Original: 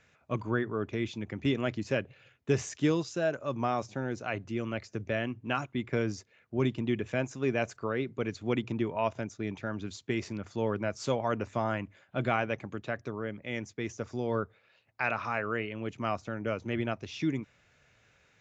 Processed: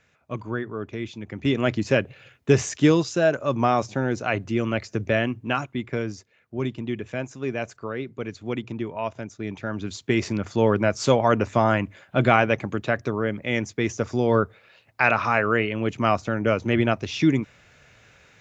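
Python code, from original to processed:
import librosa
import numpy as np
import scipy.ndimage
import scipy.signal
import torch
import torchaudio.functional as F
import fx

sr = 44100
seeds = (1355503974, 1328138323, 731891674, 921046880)

y = fx.gain(x, sr, db=fx.line((1.21, 1.0), (1.7, 9.5), (5.17, 9.5), (6.15, 1.0), (9.17, 1.0), (10.29, 11.0)))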